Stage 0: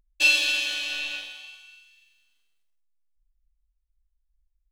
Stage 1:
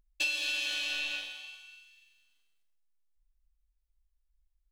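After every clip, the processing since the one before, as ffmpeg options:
-af "acompressor=threshold=-26dB:ratio=10,volume=-2.5dB"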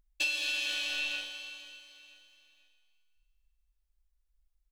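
-af "aecho=1:1:490|980|1470:0.2|0.0718|0.0259"

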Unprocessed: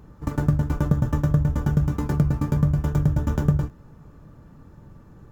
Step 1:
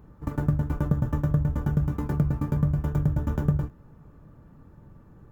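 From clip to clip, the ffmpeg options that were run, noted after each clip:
-af "equalizer=f=5.7k:t=o:w=1.8:g=-7.5,volume=-3.5dB"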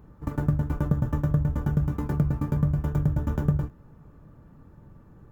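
-af anull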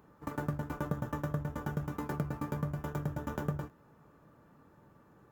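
-af "highpass=f=560:p=1"

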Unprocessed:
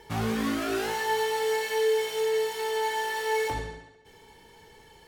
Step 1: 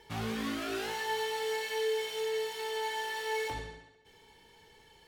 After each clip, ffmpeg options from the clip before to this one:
-af "equalizer=f=3.3k:t=o:w=1.5:g=5,volume=-7.5dB"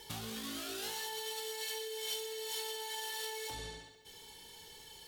-af "alimiter=level_in=9dB:limit=-24dB:level=0:latency=1:release=51,volume=-9dB,acompressor=threshold=-42dB:ratio=6,aexciter=amount=3.9:drive=3.3:freq=3.1k,volume=1dB"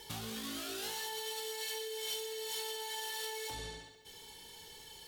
-af "asoftclip=type=tanh:threshold=-30.5dB,volume=1dB"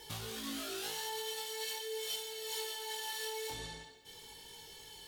-af "flanger=delay=19.5:depth=5.4:speed=0.44,volume=3dB"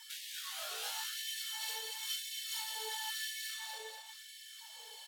-filter_complex "[0:a]aeval=exprs='val(0)+0.000631*sin(2*PI*7700*n/s)':c=same,asplit=2[a][b];[b]aecho=0:1:241|482|723|964|1205|1446:0.501|0.261|0.136|0.0705|0.0366|0.0191[c];[a][c]amix=inputs=2:normalize=0,afftfilt=real='re*gte(b*sr/1024,410*pow(1700/410,0.5+0.5*sin(2*PI*0.97*pts/sr)))':imag='im*gte(b*sr/1024,410*pow(1700/410,0.5+0.5*sin(2*PI*0.97*pts/sr)))':win_size=1024:overlap=0.75"

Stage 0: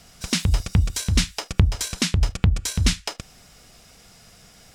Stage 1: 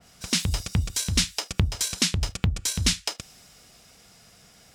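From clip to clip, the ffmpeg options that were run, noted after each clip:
-af "highpass=f=73:p=1,adynamicequalizer=threshold=0.0126:dfrequency=2600:dqfactor=0.7:tfrequency=2600:tqfactor=0.7:attack=5:release=100:ratio=0.375:range=3:mode=boostabove:tftype=highshelf,volume=-3.5dB"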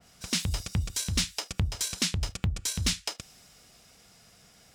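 -af "asoftclip=type=tanh:threshold=-13dB,volume=-3.5dB"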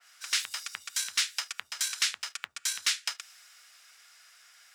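-af "highpass=f=1.5k:t=q:w=2.1"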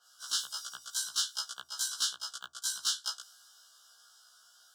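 -af "asuperstop=centerf=2200:order=20:qfactor=1.7,afftfilt=real='re*1.73*eq(mod(b,3),0)':imag='im*1.73*eq(mod(b,3),0)':win_size=2048:overlap=0.75"

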